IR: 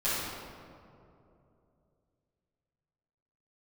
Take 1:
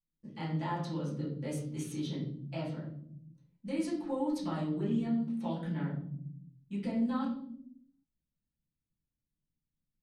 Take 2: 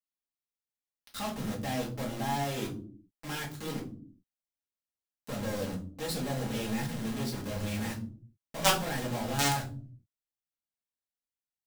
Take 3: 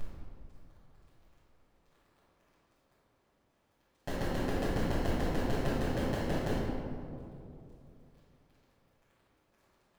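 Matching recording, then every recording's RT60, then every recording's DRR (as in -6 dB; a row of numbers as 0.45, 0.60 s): 3; 0.70 s, not exponential, 2.8 s; -8.0, -3.0, -13.5 dB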